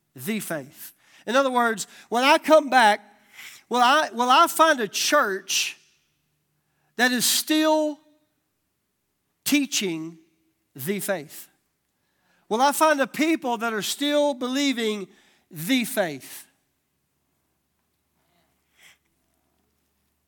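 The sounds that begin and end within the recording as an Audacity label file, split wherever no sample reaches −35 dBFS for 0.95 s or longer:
6.980000	7.940000	sound
9.460000	11.440000	sound
12.510000	16.410000	sound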